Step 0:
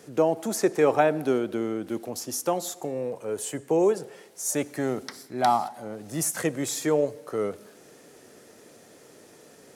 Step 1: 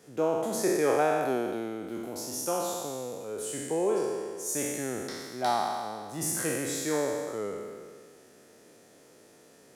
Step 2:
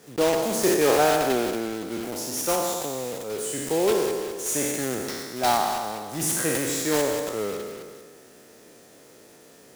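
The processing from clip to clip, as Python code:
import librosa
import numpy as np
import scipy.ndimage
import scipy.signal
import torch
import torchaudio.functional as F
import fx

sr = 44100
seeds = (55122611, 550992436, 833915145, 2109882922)

y1 = fx.spec_trails(x, sr, decay_s=1.87)
y1 = y1 * librosa.db_to_amplitude(-8.0)
y2 = fx.block_float(y1, sr, bits=3)
y2 = y2 * librosa.db_to_amplitude(5.0)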